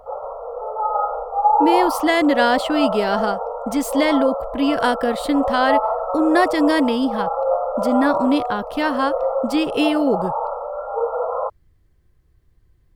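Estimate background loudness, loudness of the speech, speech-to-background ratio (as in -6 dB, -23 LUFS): -23.0 LUFS, -20.5 LUFS, 2.5 dB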